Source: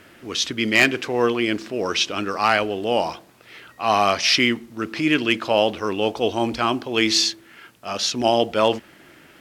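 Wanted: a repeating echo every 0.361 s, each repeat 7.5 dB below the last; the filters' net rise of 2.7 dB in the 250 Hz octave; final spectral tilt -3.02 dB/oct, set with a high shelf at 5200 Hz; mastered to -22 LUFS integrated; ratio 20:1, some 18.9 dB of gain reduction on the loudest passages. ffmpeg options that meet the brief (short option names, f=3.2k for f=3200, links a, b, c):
-af "equalizer=f=250:t=o:g=3.5,highshelf=f=5.2k:g=6.5,acompressor=threshold=-30dB:ratio=20,aecho=1:1:361|722|1083|1444|1805:0.422|0.177|0.0744|0.0312|0.0131,volume=12.5dB"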